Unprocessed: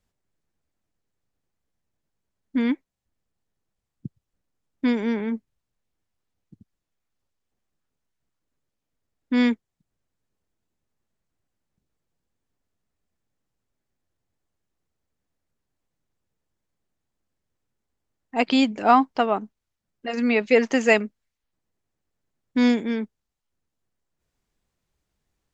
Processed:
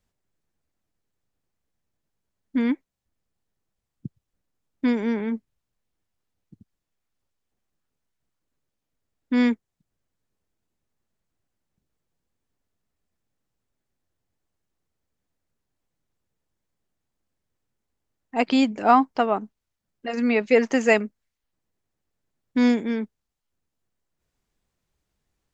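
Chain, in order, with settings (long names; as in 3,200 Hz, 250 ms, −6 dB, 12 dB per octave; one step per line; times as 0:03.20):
dynamic equaliser 3,400 Hz, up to −4 dB, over −41 dBFS, Q 1.3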